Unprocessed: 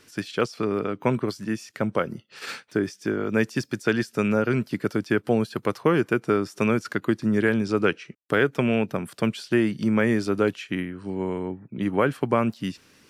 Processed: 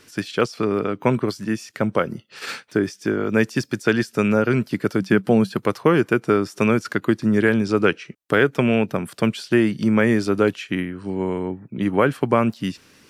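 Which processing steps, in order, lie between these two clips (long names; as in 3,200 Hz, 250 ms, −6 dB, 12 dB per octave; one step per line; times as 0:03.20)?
0:05.00–0:05.58: parametric band 190 Hz +12 dB 0.27 octaves
level +4 dB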